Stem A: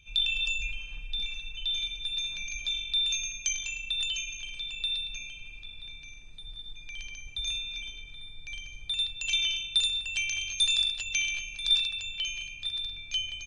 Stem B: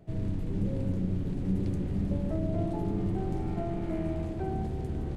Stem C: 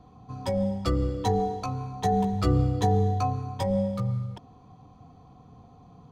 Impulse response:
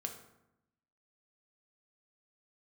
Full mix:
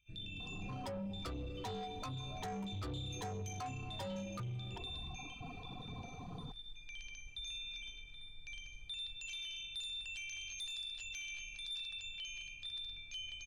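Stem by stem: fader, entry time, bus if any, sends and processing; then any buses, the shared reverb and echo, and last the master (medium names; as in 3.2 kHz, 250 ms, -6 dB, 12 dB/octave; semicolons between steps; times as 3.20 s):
-19.0 dB, 0.00 s, no bus, no send, none
-18.5 dB, 0.00 s, bus A, no send, phase shifter stages 8, 0.39 Hz, lowest notch 130–2400 Hz
-1.5 dB, 0.40 s, bus A, no send, reverb removal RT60 1.6 s
bus A: 0.0 dB, expander -54 dBFS; compression 3:1, threshold -38 dBFS, peak gain reduction 13 dB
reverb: none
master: level rider gain up to 11 dB; saturation -26 dBFS, distortion -11 dB; peak limiter -38 dBFS, peak gain reduction 12 dB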